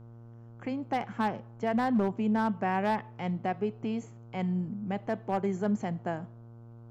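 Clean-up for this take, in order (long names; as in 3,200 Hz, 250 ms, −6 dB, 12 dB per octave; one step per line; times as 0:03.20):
clipped peaks rebuilt −21 dBFS
hum removal 116.1 Hz, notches 13
downward expander −41 dBFS, range −21 dB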